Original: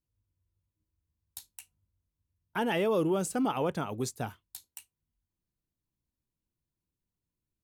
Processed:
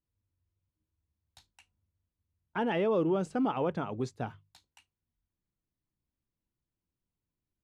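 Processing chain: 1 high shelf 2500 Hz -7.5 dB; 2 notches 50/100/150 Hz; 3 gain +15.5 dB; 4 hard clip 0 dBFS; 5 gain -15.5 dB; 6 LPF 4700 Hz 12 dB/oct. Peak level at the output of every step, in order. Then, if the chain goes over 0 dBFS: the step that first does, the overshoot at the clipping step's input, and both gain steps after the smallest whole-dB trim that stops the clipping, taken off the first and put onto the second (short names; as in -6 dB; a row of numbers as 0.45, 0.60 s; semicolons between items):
-19.5, -19.5, -4.0, -4.0, -19.5, -19.5 dBFS; no overload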